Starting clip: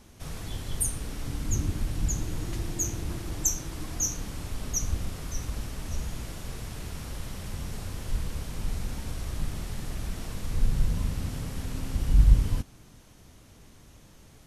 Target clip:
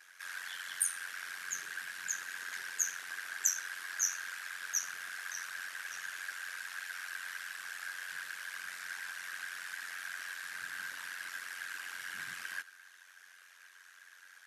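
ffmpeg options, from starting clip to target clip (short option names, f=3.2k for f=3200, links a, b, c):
-af "afftfilt=real='hypot(re,im)*cos(2*PI*random(0))':imag='hypot(re,im)*sin(2*PI*random(1))':win_size=512:overlap=0.75,aeval=exprs='val(0)*sin(2*PI*45*n/s)':c=same,highpass=f=1.6k:t=q:w=10,volume=5.5dB"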